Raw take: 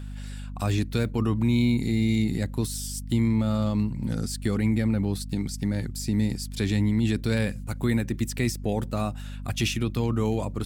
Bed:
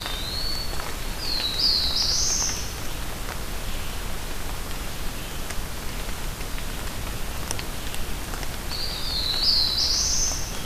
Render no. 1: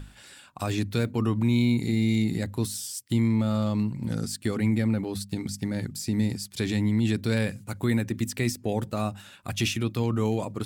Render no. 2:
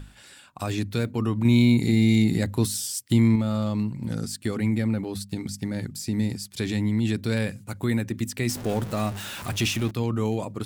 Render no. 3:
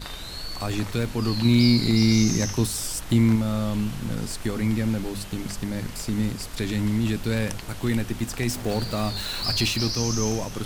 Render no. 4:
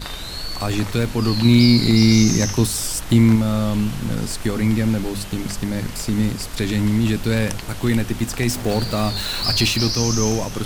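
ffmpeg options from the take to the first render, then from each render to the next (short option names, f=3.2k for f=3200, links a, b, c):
-af "bandreject=f=50:t=h:w=6,bandreject=f=100:t=h:w=6,bandreject=f=150:t=h:w=6,bandreject=f=200:t=h:w=6,bandreject=f=250:t=h:w=6"
-filter_complex "[0:a]asettb=1/sr,asplit=3[a][b][c];[a]atrim=end=1.454[d];[b]atrim=start=1.45:end=3.36,asetpts=PTS-STARTPTS,afade=t=in:d=0.004:c=qsin,afade=t=out:st=1.906:d=0.004:c=qsin,acontrast=20[e];[c]atrim=start=3.356[f];[d][e]acrossfade=d=0.004:c1=hsin:c2=qsin[g];[g][f]acrossfade=d=0.004:c1=qsin:c2=hsin,asettb=1/sr,asplit=3[h][i][j];[h]atrim=end=8.494[k];[i]atrim=start=8.49:end=9.91,asetpts=PTS-STARTPTS,afade=t=in:d=0.004:c=qsin,afade=t=out:st=1.416:d=0.004:c=qsin,aeval=exprs='val(0)+0.5*0.0266*sgn(val(0))':c=same[l];[j]atrim=start=9.906[m];[k][l]acrossfade=d=0.004:c1=hsin:c2=qsin[n];[n][m]acrossfade=d=0.004:c1=qsin:c2=hsin"
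-filter_complex "[1:a]volume=-7dB[a];[0:a][a]amix=inputs=2:normalize=0"
-af "volume=5.5dB,alimiter=limit=-3dB:level=0:latency=1"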